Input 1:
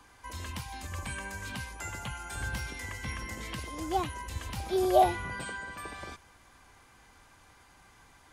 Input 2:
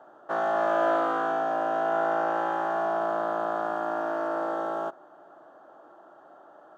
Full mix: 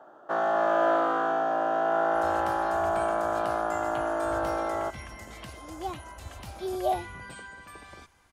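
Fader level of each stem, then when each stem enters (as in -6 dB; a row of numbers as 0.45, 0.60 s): -5.0, +0.5 dB; 1.90, 0.00 s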